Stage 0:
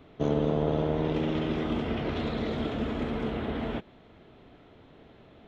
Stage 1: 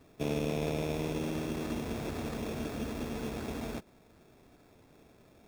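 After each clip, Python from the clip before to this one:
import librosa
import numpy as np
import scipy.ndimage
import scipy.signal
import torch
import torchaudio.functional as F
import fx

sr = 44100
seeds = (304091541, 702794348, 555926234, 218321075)

y = fx.sample_hold(x, sr, seeds[0], rate_hz=3000.0, jitter_pct=0)
y = fx.slew_limit(y, sr, full_power_hz=190.0)
y = y * 10.0 ** (-6.0 / 20.0)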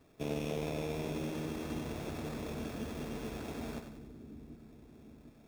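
y = fx.echo_split(x, sr, split_hz=360.0, low_ms=753, high_ms=94, feedback_pct=52, wet_db=-7.5)
y = y * 10.0 ** (-4.5 / 20.0)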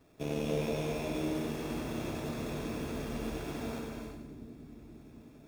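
y = fx.rev_gated(x, sr, seeds[1], gate_ms=400, shape='flat', drr_db=0.0)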